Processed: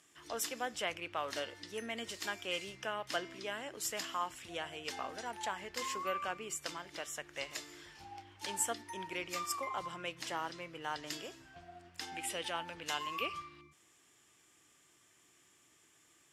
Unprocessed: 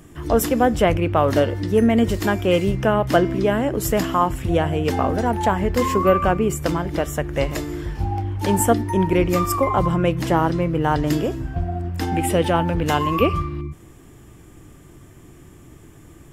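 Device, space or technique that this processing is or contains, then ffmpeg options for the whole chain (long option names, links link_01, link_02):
piezo pickup straight into a mixer: -af "lowpass=5300,aderivative,volume=-1dB"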